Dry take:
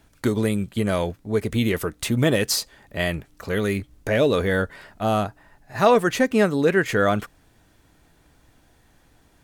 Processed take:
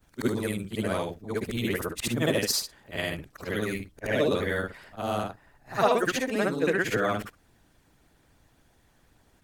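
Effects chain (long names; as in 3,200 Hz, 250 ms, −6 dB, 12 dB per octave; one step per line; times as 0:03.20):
every overlapping window played backwards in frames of 152 ms
harmonic and percussive parts rebalanced harmonic −9 dB
level +2 dB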